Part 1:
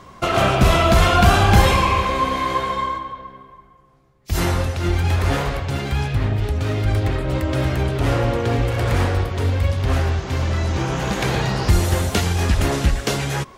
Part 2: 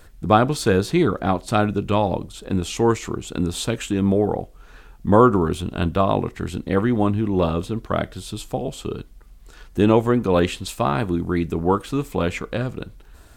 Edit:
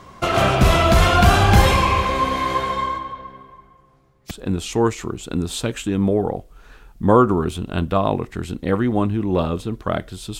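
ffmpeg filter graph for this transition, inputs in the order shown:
-filter_complex "[0:a]apad=whole_dur=10.39,atrim=end=10.39,atrim=end=4.312[a];[1:a]atrim=start=2.348:end=8.43[b];[a][b]acrossfade=d=0.004:c1=hsin:c2=hsin"

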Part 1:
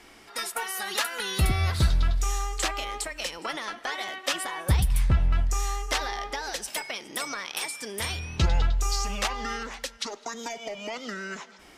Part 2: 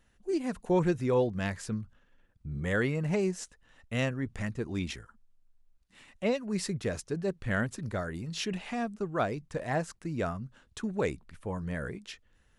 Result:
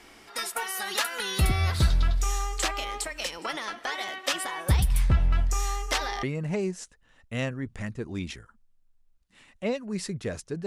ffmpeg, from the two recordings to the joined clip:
-filter_complex "[0:a]apad=whole_dur=10.66,atrim=end=10.66,atrim=end=6.232[a];[1:a]atrim=start=2.828:end=7.26[b];[a][b]acrossfade=d=0.004:c1=hsin:c2=hsin"

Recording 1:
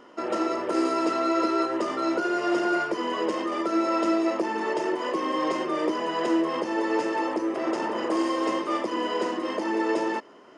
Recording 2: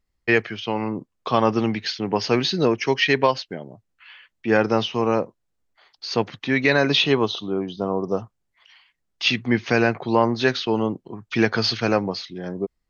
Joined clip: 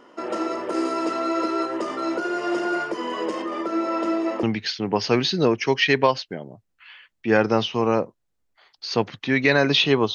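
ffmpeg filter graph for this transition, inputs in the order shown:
-filter_complex "[0:a]asettb=1/sr,asplit=3[a][b][c];[a]atrim=end=3.424[d];[b]atrim=start=3.42:end=4.43,asetpts=PTS-STARTPTS,afade=t=in:d=0.004:c=qsin,afade=t=out:st=1.006:d=0.004:c=qsin,lowpass=f=4k:p=1[e];[c]atrim=start=4.426[f];[d][e]acrossfade=d=0.004:c1=hsin:c2=qsin[g];[g][f]acrossfade=d=0.004:c1=qsin:c2=hsin,apad=whole_dur=10.14,atrim=end=10.14,atrim=end=4.432[h];[1:a]atrim=start=1.628:end=7.34[i];[h][i]acrossfade=d=0.004:c1=hsin:c2=hsin"

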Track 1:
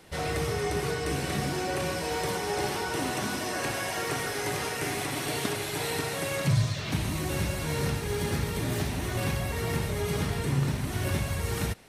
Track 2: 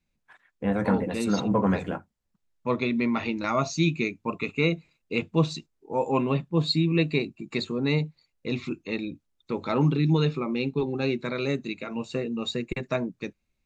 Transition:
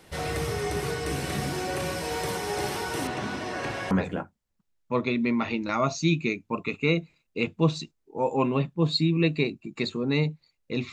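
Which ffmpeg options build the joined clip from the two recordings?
-filter_complex "[0:a]asettb=1/sr,asplit=3[a][b][c];[a]atrim=end=3.074[d];[b]atrim=start=3.07:end=3.91,asetpts=PTS-STARTPTS,afade=t=in:d=0.004:c=qsin,afade=t=out:st=0.836:d=0.004:c=qsin,adynamicsmooth=sensitivity=1:basefreq=4.4k[e];[c]atrim=start=3.906[f];[d][e]acrossfade=d=0.004:c1=hsin:c2=qsin[g];[g][f]acrossfade=d=0.004:c1=qsin:c2=hsin,apad=whole_dur=10.92,atrim=end=10.92,atrim=end=3.912[h];[1:a]atrim=start=1.658:end=8.67[i];[h][i]acrossfade=d=0.004:c1=hsin:c2=hsin"

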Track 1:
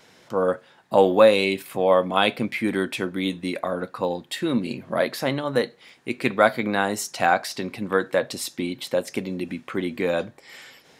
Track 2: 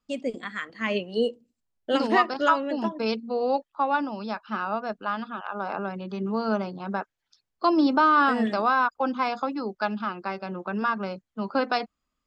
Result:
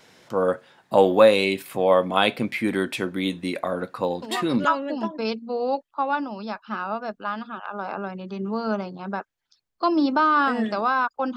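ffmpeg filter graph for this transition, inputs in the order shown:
-filter_complex "[1:a]asplit=2[a][b];[0:a]apad=whole_dur=11.36,atrim=end=11.36,atrim=end=4.652[c];[b]atrim=start=2.458:end=9.17[d];[a]atrim=start=2.03:end=2.46,asetpts=PTS-STARTPTS,volume=-8.5dB,afade=t=in:d=0.004:c=hsin,afade=t=out:st=0.426:d=0.004:c=hsin,adelay=4220[e];[c][d]acrossfade=d=0.004:c1=hsin:c2=hsin[f];[f][e]amix=inputs=2:normalize=0"

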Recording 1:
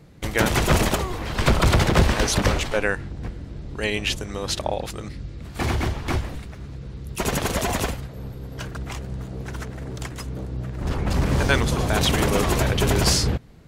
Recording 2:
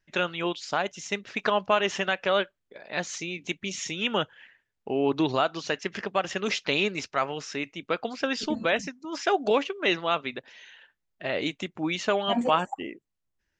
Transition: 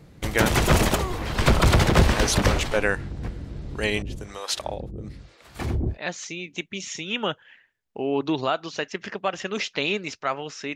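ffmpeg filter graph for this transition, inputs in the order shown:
-filter_complex "[0:a]asettb=1/sr,asplit=3[a][b][c];[a]atrim=end=4.024[d];[b]atrim=start=4.02:end=5.98,asetpts=PTS-STARTPTS,afade=t=in:d=0.004:c=qsin,afade=t=out:st=1.956:d=0.004:c=qsin,acrossover=split=510[e][f];[e]aeval=exprs='val(0)*(1-1/2+1/2*cos(2*PI*1.1*n/s))':c=same[g];[f]aeval=exprs='val(0)*(1-1/2-1/2*cos(2*PI*1.1*n/s))':c=same[h];[g][h]amix=inputs=2:normalize=0[i];[c]atrim=start=5.976[j];[d][i]acrossfade=d=0.004:c1=hsin:c2=qsin[k];[k][j]acrossfade=d=0.004:c1=qsin:c2=hsin,apad=whole_dur=10.75,atrim=end=10.75,atrim=end=5.98,asetpts=PTS-STARTPTS[l];[1:a]atrim=start=2.79:end=7.66,asetpts=PTS-STARTPTS[m];[l][m]acrossfade=d=0.1:c1=tri:c2=tri"

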